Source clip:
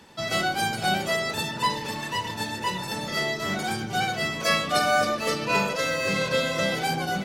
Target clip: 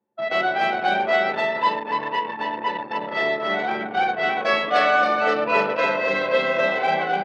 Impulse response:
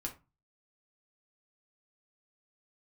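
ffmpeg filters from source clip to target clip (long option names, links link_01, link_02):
-filter_complex "[0:a]lowpass=2100,equalizer=frequency=1300:width_type=o:width=0.7:gain=-4,asplit=2[link_01][link_02];[link_02]adelay=41,volume=-9dB[link_03];[link_01][link_03]amix=inputs=2:normalize=0,aecho=1:1:290|408:0.596|0.141,asplit=2[link_04][link_05];[1:a]atrim=start_sample=2205,adelay=90[link_06];[link_05][link_06]afir=irnorm=-1:irlink=0,volume=-19.5dB[link_07];[link_04][link_07]amix=inputs=2:normalize=0,anlmdn=25.1,highpass=450,volume=6.5dB"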